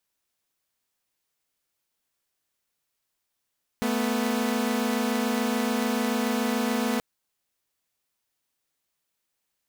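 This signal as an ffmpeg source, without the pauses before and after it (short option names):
-f lavfi -i "aevalsrc='0.0631*((2*mod(220*t,1)-1)+(2*mod(246.94*t,1)-1))':d=3.18:s=44100"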